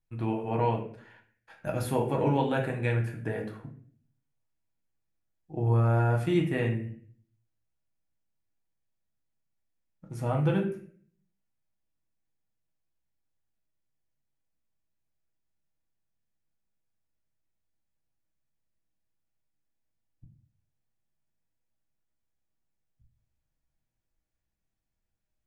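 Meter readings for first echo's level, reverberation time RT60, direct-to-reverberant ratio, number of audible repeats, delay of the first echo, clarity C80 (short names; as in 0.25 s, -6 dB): none, 0.50 s, 0.0 dB, none, none, 12.0 dB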